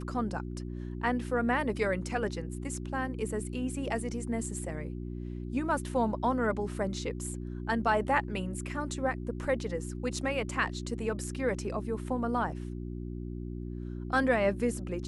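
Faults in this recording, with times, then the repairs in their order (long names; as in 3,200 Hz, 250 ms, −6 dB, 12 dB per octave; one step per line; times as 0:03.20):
mains hum 60 Hz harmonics 6 −38 dBFS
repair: hum removal 60 Hz, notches 6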